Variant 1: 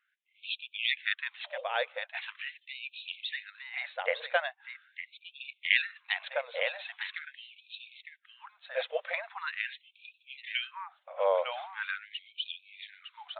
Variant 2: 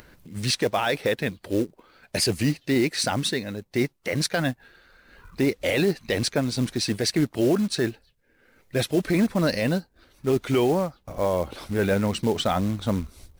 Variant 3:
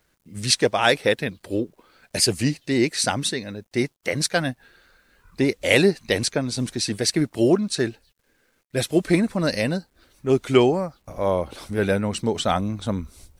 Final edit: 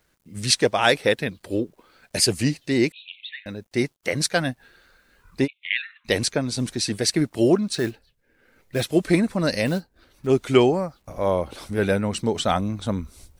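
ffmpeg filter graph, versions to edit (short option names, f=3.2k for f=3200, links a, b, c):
-filter_complex "[0:a]asplit=2[a][b];[1:a]asplit=2[c][d];[2:a]asplit=5[e][f][g][h][i];[e]atrim=end=2.922[j];[a]atrim=start=2.918:end=3.462[k];[f]atrim=start=3.458:end=5.48[l];[b]atrim=start=5.44:end=6.08[m];[g]atrim=start=6.04:end=7.732[n];[c]atrim=start=7.728:end=8.862[o];[h]atrim=start=8.858:end=9.662[p];[d]atrim=start=9.658:end=10.272[q];[i]atrim=start=10.268[r];[j][k]acrossfade=d=0.004:c1=hsin:c2=hsin[s];[s][l]acrossfade=d=0.004:c1=hsin:c2=hsin[t];[t][m]acrossfade=d=0.04:c1=tri:c2=tri[u];[u][n]acrossfade=d=0.04:c1=tri:c2=tri[v];[v][o]acrossfade=d=0.004:c1=hsin:c2=hsin[w];[w][p]acrossfade=d=0.004:c1=hsin:c2=hsin[x];[x][q]acrossfade=d=0.004:c1=hsin:c2=hsin[y];[y][r]acrossfade=d=0.004:c1=hsin:c2=hsin"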